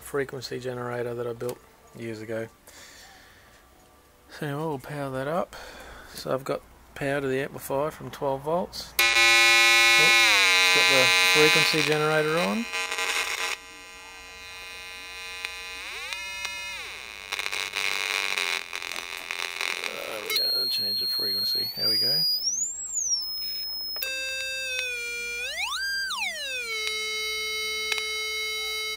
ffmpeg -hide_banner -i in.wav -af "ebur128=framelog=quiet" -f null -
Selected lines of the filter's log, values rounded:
Integrated loudness:
  I:         -23.5 LUFS
  Threshold: -34.4 LUFS
Loudness range:
  LRA:        17.3 LU
  Threshold: -44.1 LUFS
  LRA low:   -34.8 LUFS
  LRA high:  -17.5 LUFS